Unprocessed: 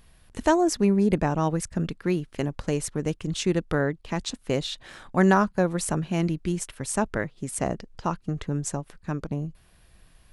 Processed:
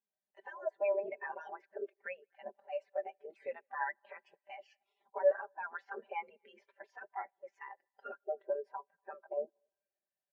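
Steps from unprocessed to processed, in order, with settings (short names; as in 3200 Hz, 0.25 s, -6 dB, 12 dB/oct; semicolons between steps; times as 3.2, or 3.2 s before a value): spectral gate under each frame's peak -15 dB weak; bell 1200 Hz -7.5 dB 0.53 oct; comb 5.1 ms, depth 73%; compressor 2.5:1, threshold -40 dBFS, peak gain reduction 9 dB; limiter -32 dBFS, peak gain reduction 9 dB; band-pass 960 Hz, Q 0.65; on a send: multi-head echo 80 ms, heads all three, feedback 48%, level -22 dB; on the sum: spectral expander 2.5:1; gain +14 dB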